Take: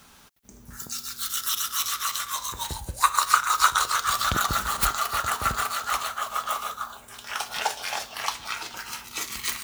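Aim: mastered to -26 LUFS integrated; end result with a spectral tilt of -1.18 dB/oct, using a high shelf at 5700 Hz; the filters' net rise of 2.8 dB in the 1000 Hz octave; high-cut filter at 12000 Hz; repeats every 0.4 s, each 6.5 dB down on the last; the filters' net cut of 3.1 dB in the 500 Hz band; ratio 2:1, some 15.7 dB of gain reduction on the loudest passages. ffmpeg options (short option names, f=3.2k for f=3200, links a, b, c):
-af "lowpass=12k,equalizer=f=500:t=o:g=-6.5,equalizer=f=1k:t=o:g=4.5,highshelf=f=5.7k:g=4.5,acompressor=threshold=-42dB:ratio=2,aecho=1:1:400|800|1200|1600|2000|2400:0.473|0.222|0.105|0.0491|0.0231|0.0109,volume=9dB"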